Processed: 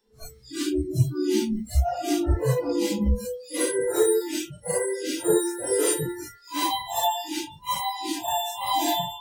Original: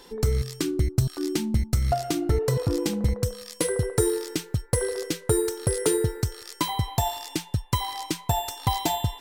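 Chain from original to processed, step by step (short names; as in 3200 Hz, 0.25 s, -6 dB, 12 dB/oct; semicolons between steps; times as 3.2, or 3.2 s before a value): phase scrambler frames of 0.2 s; bell 98 Hz -4 dB 0.2 oct; spectral noise reduction 28 dB; gain +3 dB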